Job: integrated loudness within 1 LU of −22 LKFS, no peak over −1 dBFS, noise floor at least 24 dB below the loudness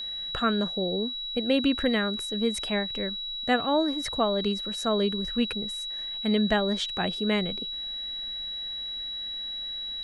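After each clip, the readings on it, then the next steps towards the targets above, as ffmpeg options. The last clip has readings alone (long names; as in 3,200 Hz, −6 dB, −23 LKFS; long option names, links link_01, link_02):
interfering tone 3,900 Hz; level of the tone −32 dBFS; integrated loudness −27.5 LKFS; sample peak −11.0 dBFS; target loudness −22.0 LKFS
→ -af "bandreject=frequency=3900:width=30"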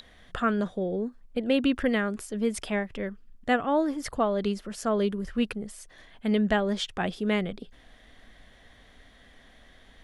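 interfering tone none found; integrated loudness −28.5 LKFS; sample peak −11.5 dBFS; target loudness −22.0 LKFS
→ -af "volume=6.5dB"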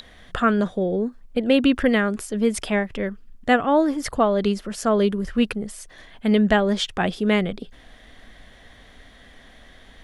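integrated loudness −22.0 LKFS; sample peak −5.0 dBFS; background noise floor −49 dBFS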